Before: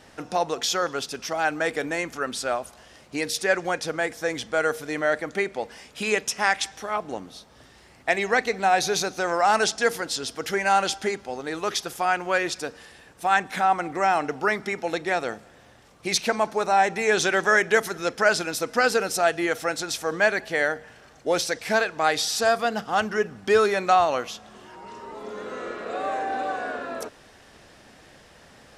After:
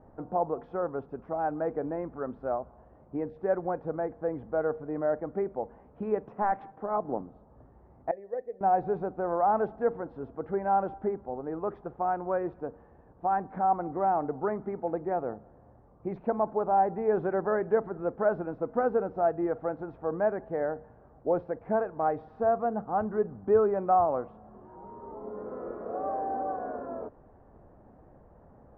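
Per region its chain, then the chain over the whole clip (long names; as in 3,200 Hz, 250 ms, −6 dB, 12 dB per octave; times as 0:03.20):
0:06.26–0:07.21: high-pass filter 120 Hz 24 dB per octave + leveller curve on the samples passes 1
0:08.11–0:08.61: formant resonators in series e + multiband upward and downward expander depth 40%
whole clip: low-pass filter 1,000 Hz 24 dB per octave; low-shelf EQ 100 Hz +8.5 dB; level −3.5 dB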